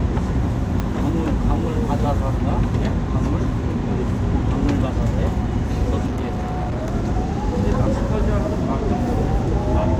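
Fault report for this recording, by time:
0:00.80: click −10 dBFS
0:06.06–0:06.95: clipping −20 dBFS

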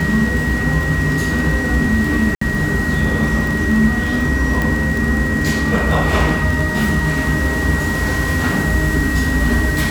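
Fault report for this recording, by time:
surface crackle 27 per second −19 dBFS
whistle 1,900 Hz −21 dBFS
0:02.35–0:02.41: drop-out 64 ms
0:04.62: click

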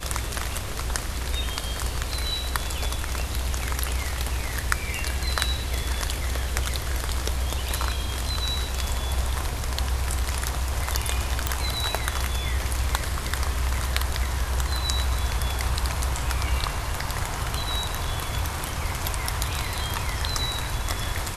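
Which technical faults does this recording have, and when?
0:11.47: click

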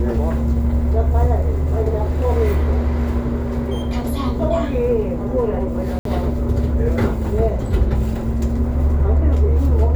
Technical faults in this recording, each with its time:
0:05.99–0:06.05: drop-out 63 ms

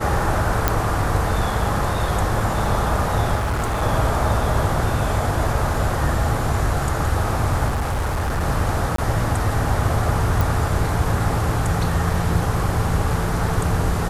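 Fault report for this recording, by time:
0:00.68: click −2 dBFS
0:03.35–0:03.83: clipping −18.5 dBFS
0:05.74: drop-out 2.9 ms
0:07.68–0:08.42: clipping −18.5 dBFS
0:08.96–0:08.98: drop-out 23 ms
0:10.41: click

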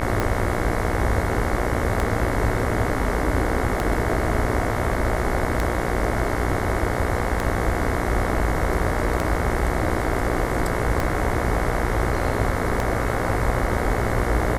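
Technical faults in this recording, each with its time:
mains buzz 60 Hz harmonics 37 −27 dBFS
scratch tick 33 1/3 rpm −9 dBFS

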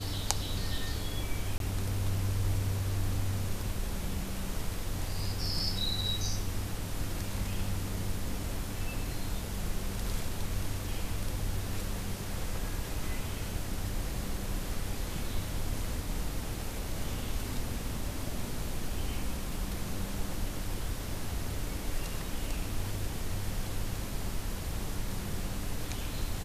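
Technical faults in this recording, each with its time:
0:01.58–0:01.60: drop-out 22 ms

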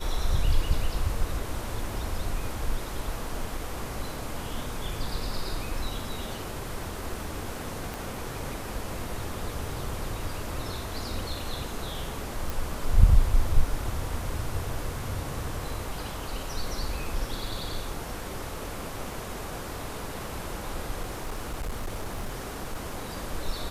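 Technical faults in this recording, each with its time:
0:07.94: click
0:12.50: click
0:21.02–0:23.12: clipping −28 dBFS

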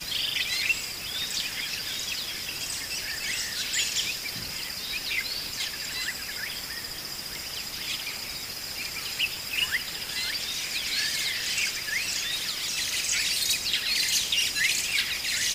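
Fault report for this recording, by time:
surface crackle 42 per second −37 dBFS

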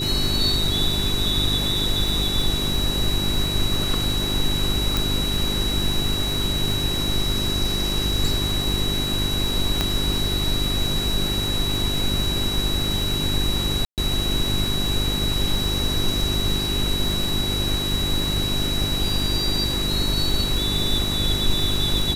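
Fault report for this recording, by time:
surface crackle 150 per second −29 dBFS
mains hum 50 Hz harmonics 8 −28 dBFS
whistle 3,900 Hz −25 dBFS
0:04.97: click
0:09.81: click −6 dBFS
0:13.85–0:13.98: drop-out 128 ms

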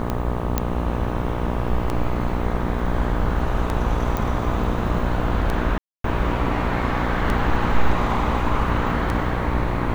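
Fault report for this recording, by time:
mains buzz 60 Hz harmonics 21 −25 dBFS
scratch tick 33 1/3 rpm −11 dBFS
0:00.58: click −6 dBFS
0:04.17: click
0:05.78–0:06.04: drop-out 263 ms

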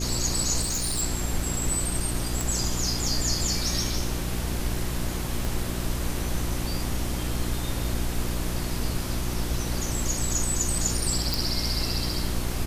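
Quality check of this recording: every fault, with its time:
mains hum 60 Hz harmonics 6 −31 dBFS
0:00.61–0:01.03: clipping −23.5 dBFS
0:02.41: click
0:05.45: click
0:11.34: click

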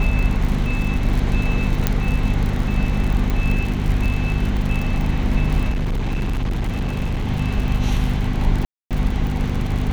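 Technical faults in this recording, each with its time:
surface crackle 73 per second −24 dBFS
mains hum 50 Hz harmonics 5 −23 dBFS
0:01.87: click −3 dBFS
0:03.30: click
0:05.69–0:07.28: clipping −18 dBFS
0:08.65–0:08.91: drop-out 257 ms

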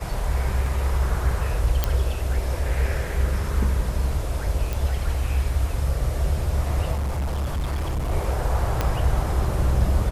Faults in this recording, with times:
0:00.66: drop-out 2.1 ms
0:01.84: click −6 dBFS
0:04.73: click
0:06.93–0:08.12: clipping −22 dBFS
0:08.81: click −8 dBFS

